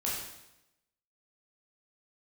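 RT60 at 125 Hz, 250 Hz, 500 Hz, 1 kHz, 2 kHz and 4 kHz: 1.0, 0.95, 0.90, 0.85, 0.85, 0.85 seconds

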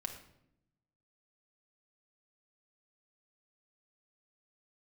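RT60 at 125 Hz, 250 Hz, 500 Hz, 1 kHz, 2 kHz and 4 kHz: 1.3, 1.2, 0.85, 0.65, 0.60, 0.55 seconds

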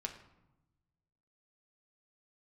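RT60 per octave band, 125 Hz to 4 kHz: 1.7, 1.4, 0.95, 0.95, 0.70, 0.55 seconds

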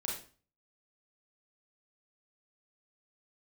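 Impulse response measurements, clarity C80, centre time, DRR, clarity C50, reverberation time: 9.0 dB, 40 ms, −3.5 dB, 3.5 dB, 0.40 s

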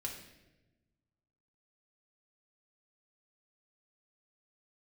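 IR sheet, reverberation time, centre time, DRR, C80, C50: 1.1 s, 32 ms, −2.0 dB, 8.0 dB, 5.5 dB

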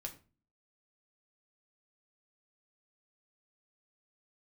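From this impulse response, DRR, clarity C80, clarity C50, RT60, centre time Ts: 2.0 dB, 18.5 dB, 13.5 dB, 0.35 s, 10 ms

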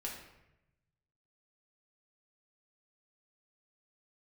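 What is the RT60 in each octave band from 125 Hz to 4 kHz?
1.7, 1.1, 0.95, 0.85, 0.90, 0.65 seconds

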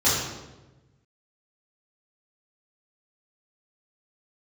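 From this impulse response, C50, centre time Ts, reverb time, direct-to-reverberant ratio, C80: 0.5 dB, 72 ms, 1.1 s, −12.0 dB, 3.5 dB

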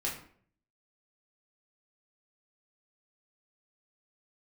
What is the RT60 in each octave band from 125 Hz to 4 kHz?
0.75, 0.65, 0.60, 0.50, 0.50, 0.35 seconds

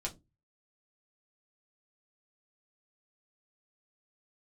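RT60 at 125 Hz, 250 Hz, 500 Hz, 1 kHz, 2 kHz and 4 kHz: 0.50, 0.35, 0.25, 0.15, 0.15, 0.15 seconds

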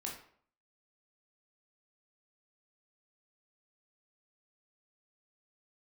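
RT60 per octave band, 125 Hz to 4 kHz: 0.60, 0.55, 0.55, 0.55, 0.50, 0.40 seconds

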